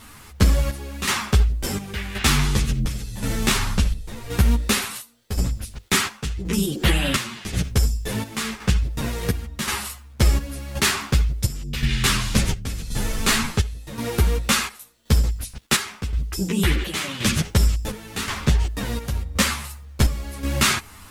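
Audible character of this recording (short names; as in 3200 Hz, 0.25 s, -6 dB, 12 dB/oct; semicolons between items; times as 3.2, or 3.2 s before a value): a quantiser's noise floor 10-bit, dither none; chopped level 0.93 Hz, depth 65%, duty 65%; a shimmering, thickened sound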